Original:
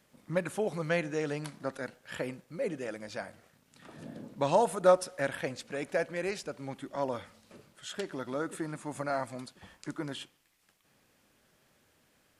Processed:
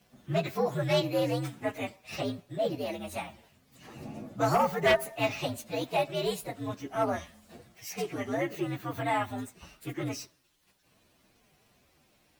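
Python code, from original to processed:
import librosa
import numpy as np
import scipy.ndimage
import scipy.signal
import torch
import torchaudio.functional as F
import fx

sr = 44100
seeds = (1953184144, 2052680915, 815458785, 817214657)

y = fx.partial_stretch(x, sr, pct=122)
y = fx.fold_sine(y, sr, drive_db=9, ceiling_db=-12.0)
y = y * librosa.db_to_amplitude(-6.0)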